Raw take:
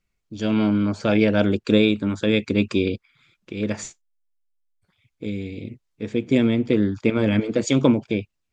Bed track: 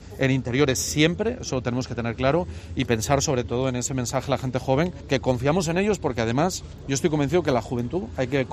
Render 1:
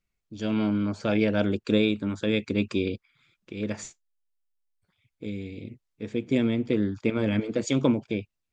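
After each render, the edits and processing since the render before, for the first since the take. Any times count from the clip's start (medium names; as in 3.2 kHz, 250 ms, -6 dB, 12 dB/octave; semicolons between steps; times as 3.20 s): trim -5.5 dB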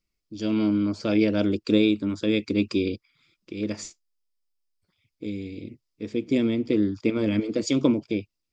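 graphic EQ with 31 bands 125 Hz -5 dB, 315 Hz +7 dB, 800 Hz -6 dB, 1.6 kHz -6 dB, 5 kHz +10 dB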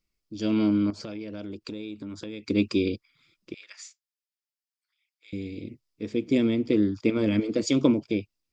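0.90–2.48 s: compression, threshold -34 dBFS; 3.54–5.33 s: ladder high-pass 1.2 kHz, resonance 25%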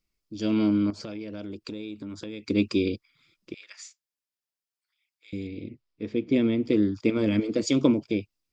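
5.47–6.63 s: low-pass 3.8 kHz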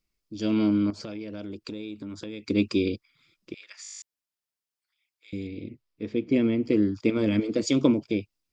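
3.82 s: stutter in place 0.02 s, 10 plays; 6.28–6.95 s: Butterworth band-stop 3.6 kHz, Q 7.6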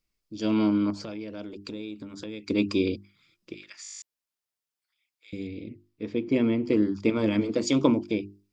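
dynamic bell 950 Hz, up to +7 dB, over -49 dBFS, Q 2.1; hum notches 50/100/150/200/250/300/350/400 Hz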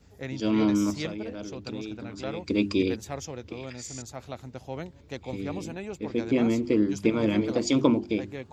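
add bed track -15 dB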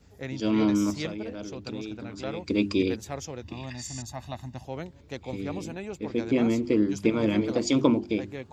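3.42–4.65 s: comb 1.1 ms, depth 83%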